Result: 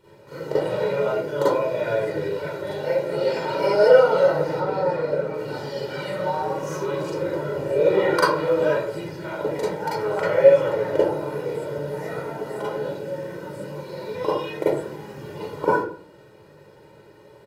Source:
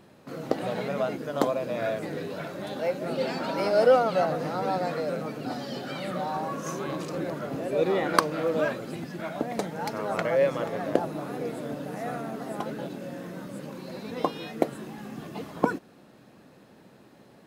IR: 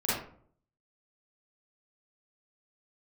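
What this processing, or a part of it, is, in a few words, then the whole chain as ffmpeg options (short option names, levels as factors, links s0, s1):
microphone above a desk: -filter_complex "[0:a]asettb=1/sr,asplit=3[s0][s1][s2];[s0]atrim=end=4.554[s3];[s1]atrim=start=4.55:end=5.34,asetpts=PTS-STARTPTS,afade=t=in:d=0.004:c=qsin,afade=t=out:st=0.786:d=0.004:c=qsin,highshelf=f=3700:g=-10.5[s4];[s2]atrim=start=5.336[s5];[s3][s4]acrossfade=d=0.004:c1=hsin:c2=qsin[s6];[s6][s5]acrossfade=d=0.004:c1=qsin:c2=hsin,aecho=1:1:2.1:0.9[s7];[1:a]atrim=start_sample=2205[s8];[s7][s8]afir=irnorm=-1:irlink=0,volume=0.447"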